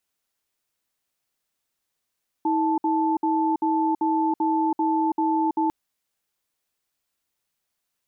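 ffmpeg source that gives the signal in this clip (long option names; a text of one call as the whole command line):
ffmpeg -f lavfi -i "aevalsrc='0.0794*(sin(2*PI*320*t)+sin(2*PI*877*t))*clip(min(mod(t,0.39),0.33-mod(t,0.39))/0.005,0,1)':duration=3.25:sample_rate=44100" out.wav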